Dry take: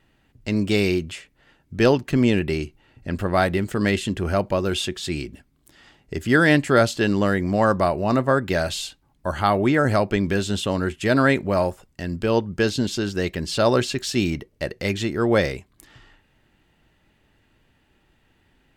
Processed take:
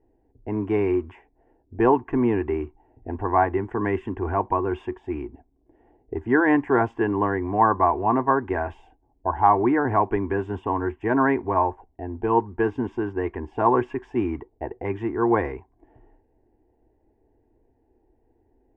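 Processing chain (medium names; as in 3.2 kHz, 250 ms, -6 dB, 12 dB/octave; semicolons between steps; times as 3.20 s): static phaser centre 850 Hz, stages 8; modulation noise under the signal 30 dB; touch-sensitive low-pass 550–1100 Hz up, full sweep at -25 dBFS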